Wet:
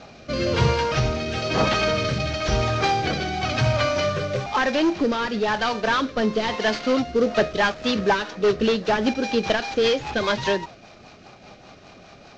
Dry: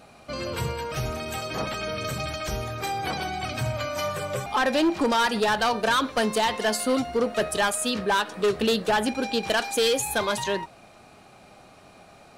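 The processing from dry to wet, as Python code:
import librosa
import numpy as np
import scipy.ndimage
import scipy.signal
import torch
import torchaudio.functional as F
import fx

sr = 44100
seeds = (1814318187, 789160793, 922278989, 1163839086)

y = fx.cvsd(x, sr, bps=32000)
y = fx.rider(y, sr, range_db=4, speed_s=0.5)
y = fx.rotary_switch(y, sr, hz=1.0, then_hz=5.0, switch_at_s=6.93)
y = y * 10.0 ** (6.5 / 20.0)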